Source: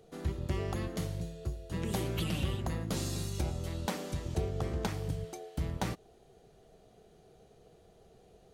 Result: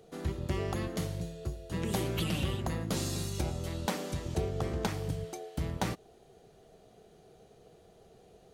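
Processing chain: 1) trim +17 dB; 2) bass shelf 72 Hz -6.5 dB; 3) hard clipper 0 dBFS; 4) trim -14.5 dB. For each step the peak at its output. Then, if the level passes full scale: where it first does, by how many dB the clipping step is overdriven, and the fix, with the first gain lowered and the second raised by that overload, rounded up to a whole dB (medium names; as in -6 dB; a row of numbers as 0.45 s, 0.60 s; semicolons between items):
-4.5 dBFS, -4.0 dBFS, -4.0 dBFS, -18.5 dBFS; nothing clips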